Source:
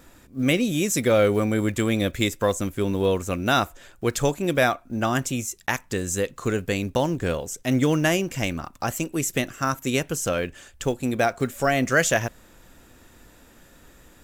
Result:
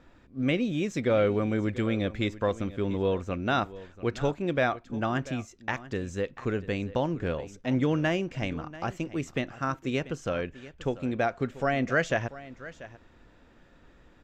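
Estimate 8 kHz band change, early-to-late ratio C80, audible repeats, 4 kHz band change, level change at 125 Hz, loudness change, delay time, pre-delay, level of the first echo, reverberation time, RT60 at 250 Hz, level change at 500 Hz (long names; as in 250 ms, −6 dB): −20.5 dB, no reverb audible, 1, −9.0 dB, −4.5 dB, −5.5 dB, 689 ms, no reverb audible, −17.0 dB, no reverb audible, no reverb audible, −5.0 dB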